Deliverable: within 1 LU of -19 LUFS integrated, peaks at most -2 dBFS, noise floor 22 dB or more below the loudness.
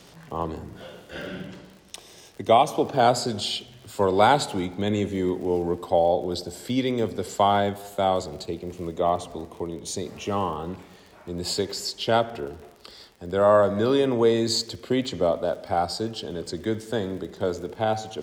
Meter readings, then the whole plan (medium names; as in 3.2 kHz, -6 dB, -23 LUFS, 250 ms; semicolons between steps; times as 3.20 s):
tick rate 34 per s; loudness -25.0 LUFS; peak level -5.5 dBFS; loudness target -19.0 LUFS
-> de-click; trim +6 dB; peak limiter -2 dBFS